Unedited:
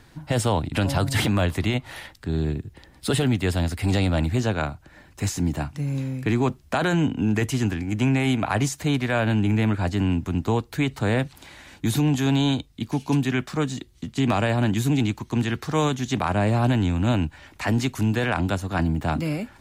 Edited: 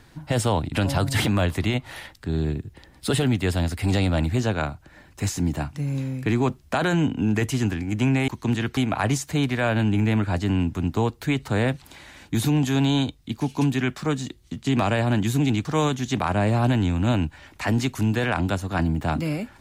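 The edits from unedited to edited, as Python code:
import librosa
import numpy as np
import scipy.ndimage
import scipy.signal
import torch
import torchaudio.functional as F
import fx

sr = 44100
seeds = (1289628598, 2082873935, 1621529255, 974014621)

y = fx.edit(x, sr, fx.move(start_s=15.16, length_s=0.49, to_s=8.28), tone=tone)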